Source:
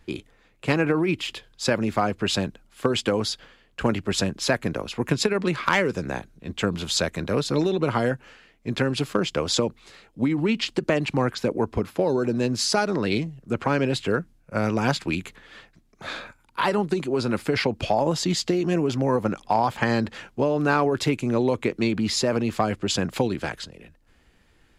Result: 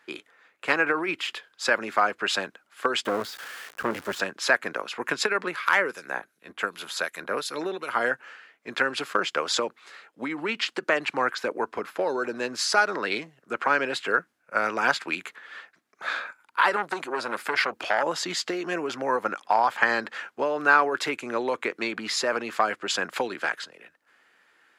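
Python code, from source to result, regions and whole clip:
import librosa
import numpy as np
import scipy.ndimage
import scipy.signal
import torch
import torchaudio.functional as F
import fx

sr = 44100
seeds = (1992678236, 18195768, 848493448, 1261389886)

y = fx.chain(x, sr, fx.crossing_spikes(level_db=-16.5),
    fx.tilt_eq(slope=-4.5),
    fx.tube_stage(drive_db=13.0, bias=0.7), at=(3.05, 4.2))
y = fx.chain(y, sr, fx.peak_eq(hz=11000.0, db=12.0, octaves=0.37),
    fx.harmonic_tremolo(hz=2.7, depth_pct=70, crossover_hz=2100.0), at=(5.45, 8.01))
y = fx.chain(y, sr, fx.highpass(hz=65.0, slope=24),
    fx.high_shelf(hz=11000.0, db=8.0),
    fx.transformer_sat(knee_hz=1100.0), at=(16.76, 18.03))
y = scipy.signal.sosfilt(scipy.signal.butter(2, 420.0, 'highpass', fs=sr, output='sos'), y)
y = fx.peak_eq(y, sr, hz=1500.0, db=10.5, octaves=1.2)
y = y * 10.0 ** (-3.0 / 20.0)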